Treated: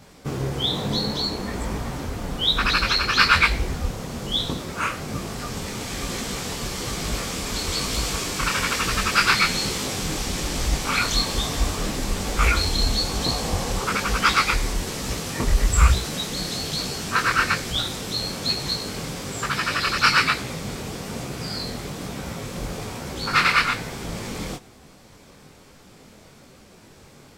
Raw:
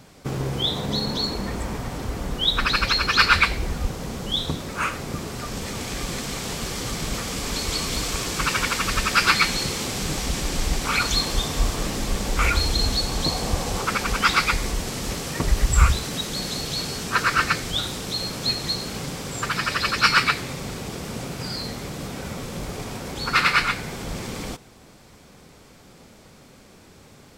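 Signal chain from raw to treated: detune thickener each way 39 cents; trim +4 dB

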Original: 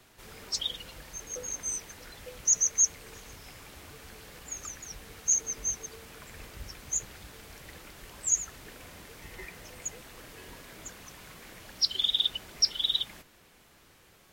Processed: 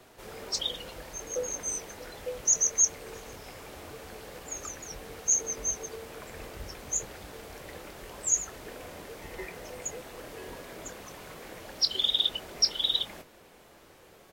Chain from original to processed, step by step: peaking EQ 530 Hz +9.5 dB 1.9 oct; doubling 24 ms -12 dB

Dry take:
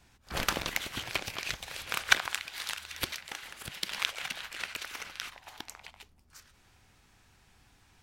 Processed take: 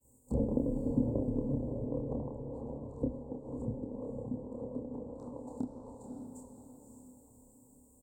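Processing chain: in parallel at -5 dB: word length cut 8-bit, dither triangular; on the sum: rippled EQ curve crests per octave 1, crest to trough 15 dB; expander -38 dBFS; elliptic band-stop 730–7500 Hz, stop band 60 dB; compression, threshold -30 dBFS, peak gain reduction 6.5 dB; peaking EQ 280 Hz +10.5 dB 1.7 oct; low-pass that closes with the level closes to 440 Hz, closed at -37 dBFS; doubling 28 ms -4 dB; echo that smears into a reverb 561 ms, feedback 41%, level -4.5 dB; on a send at -12 dB: reverberation RT60 1.4 s, pre-delay 35 ms

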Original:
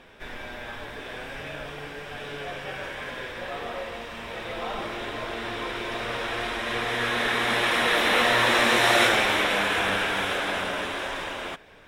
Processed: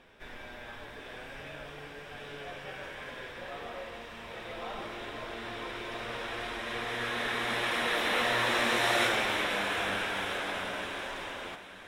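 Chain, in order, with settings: echo that smears into a reverb 861 ms, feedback 51%, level -15 dB; trim -7.5 dB

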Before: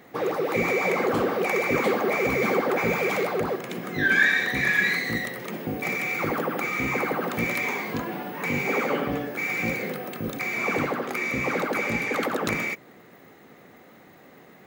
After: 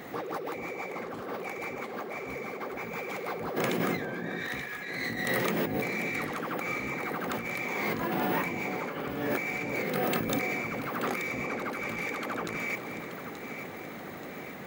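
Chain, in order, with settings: compressor with a negative ratio -35 dBFS, ratio -1; on a send: echo whose repeats swap between lows and highs 440 ms, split 1 kHz, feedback 71%, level -7 dB

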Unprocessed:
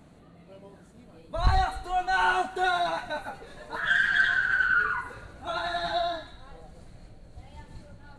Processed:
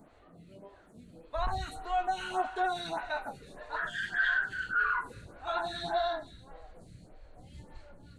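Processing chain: peak limiter -19.5 dBFS, peak gain reduction 6.5 dB; lamp-driven phase shifter 1.7 Hz

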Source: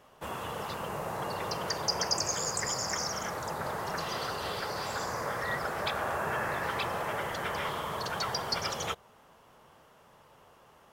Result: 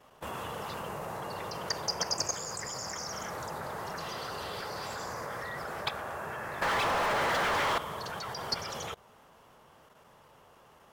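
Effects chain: 6.62–7.78 s: overdrive pedal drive 37 dB, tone 2.3 kHz, clips at -19 dBFS; level held to a coarse grid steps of 10 dB; trim +1.5 dB

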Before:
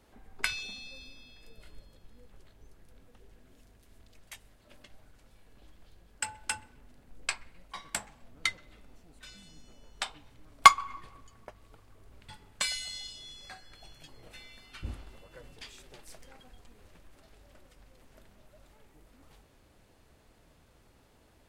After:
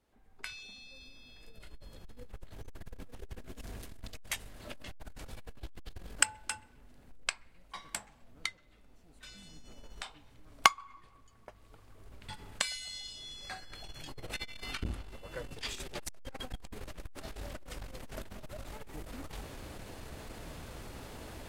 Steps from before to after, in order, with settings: recorder AGC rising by 12 dB/s; transformer saturation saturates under 1.7 kHz; trim -13 dB

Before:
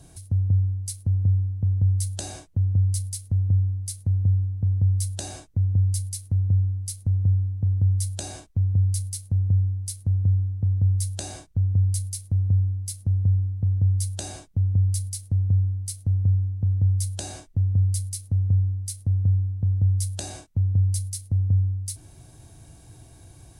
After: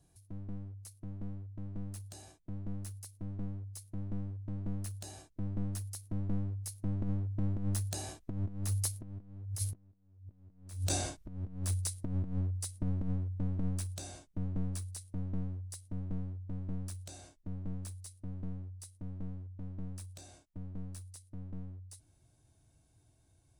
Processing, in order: one-sided wavefolder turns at -25 dBFS; Doppler pass-by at 10.08 s, 11 m/s, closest 3.2 m; compressor with a negative ratio -42 dBFS, ratio -0.5; trim +6.5 dB

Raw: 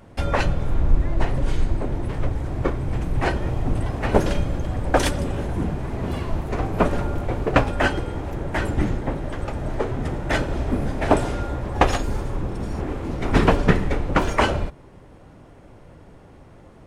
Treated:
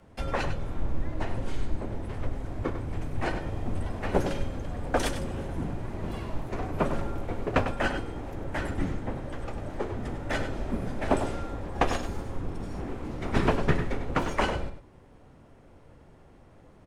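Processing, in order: frequency shift -22 Hz; echo from a far wall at 17 m, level -9 dB; trim -7.5 dB

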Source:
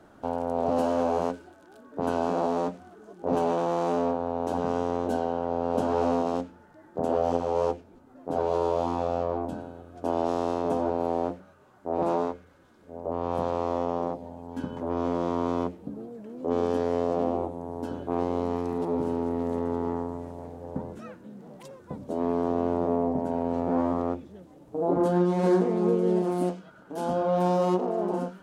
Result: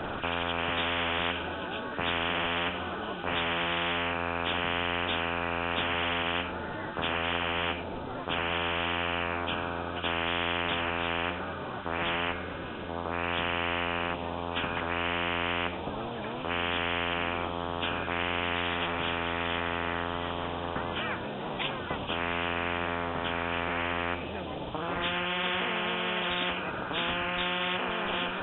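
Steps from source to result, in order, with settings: knee-point frequency compression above 2.3 kHz 4:1; spectrum-flattening compressor 10:1; trim -1.5 dB

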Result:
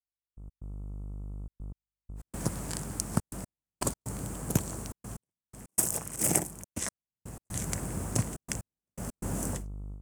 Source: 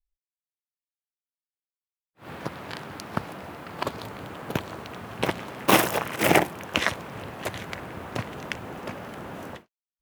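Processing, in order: mains buzz 50 Hz, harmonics 27, -48 dBFS -7 dB/octave; tone controls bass +7 dB, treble +8 dB; level rider gain up to 12 dB; FFT filter 210 Hz 0 dB, 3.8 kHz -10 dB, 8.2 kHz +15 dB, 15 kHz -1 dB; trance gate "...x.xxxxxxx.x" 122 bpm -60 dB; trim -9.5 dB

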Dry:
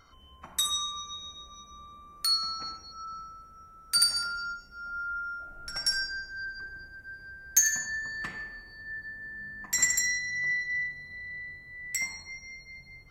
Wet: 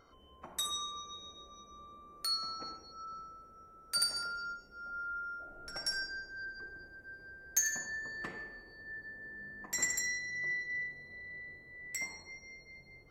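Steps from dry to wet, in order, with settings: peaking EQ 440 Hz +13.5 dB 1.9 oct; trim -8.5 dB

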